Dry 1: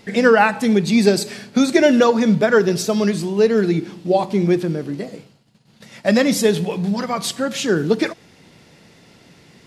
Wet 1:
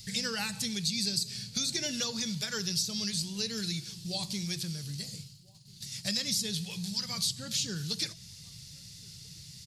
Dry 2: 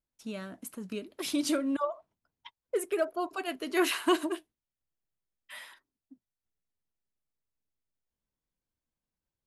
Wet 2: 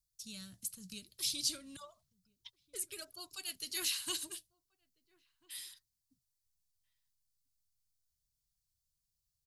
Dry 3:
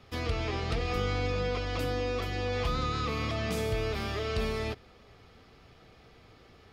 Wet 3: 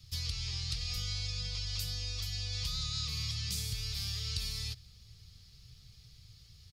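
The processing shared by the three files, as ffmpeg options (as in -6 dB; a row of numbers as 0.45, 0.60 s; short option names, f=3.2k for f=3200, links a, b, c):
-filter_complex "[0:a]firequalizer=gain_entry='entry(130,0);entry(260,-26);entry(670,-28);entry(4400,5)':delay=0.05:min_phase=1,acrossover=split=580|4800[a][b][c];[a]acompressor=threshold=-41dB:ratio=4[d];[b]acompressor=threshold=-37dB:ratio=4[e];[c]acompressor=threshold=-42dB:ratio=4[f];[d][e][f]amix=inputs=3:normalize=0,bandreject=f=660:w=21,asplit=2[g][h];[h]adelay=1341,volume=-26dB,highshelf=f=4k:g=-30.2[i];[g][i]amix=inputs=2:normalize=0,volume=3.5dB"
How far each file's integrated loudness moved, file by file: -14.5, -7.0, -4.0 LU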